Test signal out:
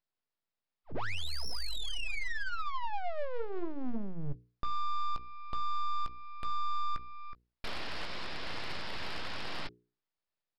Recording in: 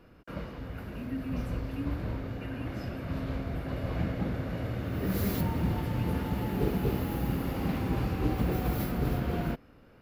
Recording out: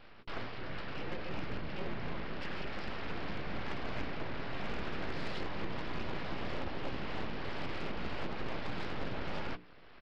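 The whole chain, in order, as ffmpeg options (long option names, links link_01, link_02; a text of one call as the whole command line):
ffmpeg -i in.wav -filter_complex "[0:a]equalizer=frequency=2600:width=0.5:gain=10,asplit=2[link_01][link_02];[link_02]adelay=17,volume=-12dB[link_03];[link_01][link_03]amix=inputs=2:normalize=0,aresample=11025,aeval=exprs='abs(val(0))':channel_layout=same,aresample=44100,highshelf=frequency=3800:gain=-7,bandreject=frequency=60:width_type=h:width=6,bandreject=frequency=120:width_type=h:width=6,bandreject=frequency=180:width_type=h:width=6,bandreject=frequency=240:width_type=h:width=6,bandreject=frequency=300:width_type=h:width=6,bandreject=frequency=360:width_type=h:width=6,bandreject=frequency=420:width_type=h:width=6,bandreject=frequency=480:width_type=h:width=6,asplit=2[link_04][link_05];[link_05]asoftclip=type=tanh:threshold=-25dB,volume=-8dB[link_06];[link_04][link_06]amix=inputs=2:normalize=0,alimiter=limit=-23dB:level=0:latency=1:release=490,aeval=exprs='0.0708*(cos(1*acos(clip(val(0)/0.0708,-1,1)))-cos(1*PI/2))+0.0224*(cos(2*acos(clip(val(0)/0.0708,-1,1)))-cos(2*PI/2))+0.01*(cos(5*acos(clip(val(0)/0.0708,-1,1)))-cos(5*PI/2))+0.000562*(cos(7*acos(clip(val(0)/0.0708,-1,1)))-cos(7*PI/2))':channel_layout=same,volume=-6dB" out.wav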